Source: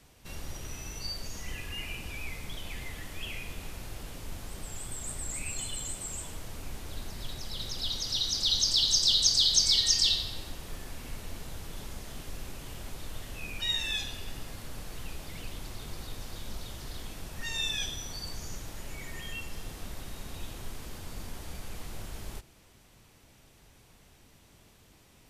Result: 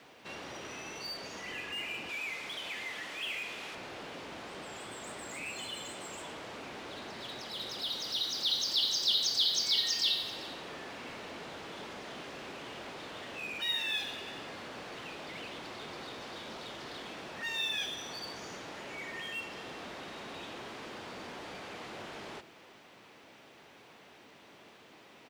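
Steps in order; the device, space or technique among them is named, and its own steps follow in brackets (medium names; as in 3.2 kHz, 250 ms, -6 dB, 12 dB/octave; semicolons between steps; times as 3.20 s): delay 392 ms -23 dB; 2.09–3.75 s: tilt EQ +2 dB/octave; phone line with mismatched companding (band-pass 310–3300 Hz; companding laws mixed up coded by mu)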